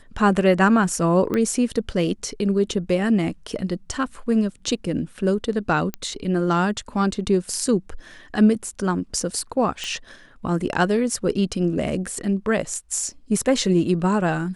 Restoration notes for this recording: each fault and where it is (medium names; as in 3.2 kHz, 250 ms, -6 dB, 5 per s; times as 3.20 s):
1.34 s: pop -12 dBFS
5.94 s: pop -13 dBFS
9.84 s: pop -14 dBFS